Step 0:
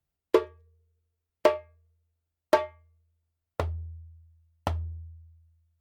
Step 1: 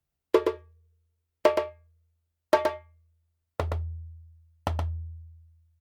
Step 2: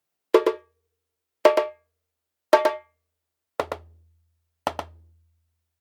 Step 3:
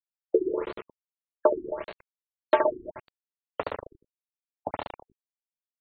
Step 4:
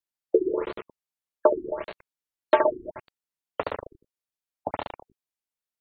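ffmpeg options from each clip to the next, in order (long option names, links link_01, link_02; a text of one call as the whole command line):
ffmpeg -i in.wav -af "aecho=1:1:121:0.531" out.wav
ffmpeg -i in.wav -af "highpass=300,volume=5.5dB" out.wav
ffmpeg -i in.wav -af "aecho=1:1:70|147|231.7|324.9|427.4:0.631|0.398|0.251|0.158|0.1,aeval=exprs='val(0)*gte(abs(val(0)),0.0355)':channel_layout=same,afftfilt=real='re*lt(b*sr/1024,380*pow(4600/380,0.5+0.5*sin(2*PI*1.7*pts/sr)))':imag='im*lt(b*sr/1024,380*pow(4600/380,0.5+0.5*sin(2*PI*1.7*pts/sr)))':win_size=1024:overlap=0.75,volume=-5dB" out.wav
ffmpeg -i in.wav -af "volume=2.5dB" -ar 48000 -c:a libmp3lame -b:a 112k out.mp3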